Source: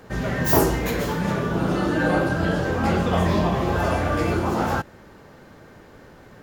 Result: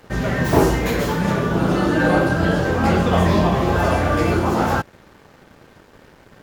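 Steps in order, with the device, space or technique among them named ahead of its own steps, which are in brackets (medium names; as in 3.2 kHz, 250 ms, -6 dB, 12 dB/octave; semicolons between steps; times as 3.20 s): early transistor amplifier (crossover distortion -49.5 dBFS; slew-rate limiter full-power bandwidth 150 Hz); trim +4.5 dB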